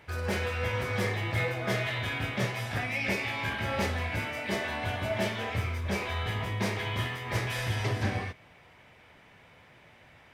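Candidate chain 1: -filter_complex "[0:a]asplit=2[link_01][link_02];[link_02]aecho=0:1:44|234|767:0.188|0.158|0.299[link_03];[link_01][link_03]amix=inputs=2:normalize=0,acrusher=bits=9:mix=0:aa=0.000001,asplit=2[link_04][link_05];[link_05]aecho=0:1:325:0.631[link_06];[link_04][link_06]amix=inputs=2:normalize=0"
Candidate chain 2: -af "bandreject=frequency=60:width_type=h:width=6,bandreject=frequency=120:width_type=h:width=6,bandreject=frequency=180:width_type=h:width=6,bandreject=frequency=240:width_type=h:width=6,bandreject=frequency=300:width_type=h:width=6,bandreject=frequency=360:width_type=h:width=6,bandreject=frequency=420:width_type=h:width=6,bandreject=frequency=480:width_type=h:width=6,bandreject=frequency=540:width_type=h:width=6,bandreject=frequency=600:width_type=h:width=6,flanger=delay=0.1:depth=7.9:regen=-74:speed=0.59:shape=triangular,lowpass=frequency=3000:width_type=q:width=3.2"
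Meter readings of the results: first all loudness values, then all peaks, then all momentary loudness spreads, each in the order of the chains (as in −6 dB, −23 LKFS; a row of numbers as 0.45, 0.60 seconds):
−29.5, −32.0 LKFS; −15.0, −18.0 dBFS; 6, 5 LU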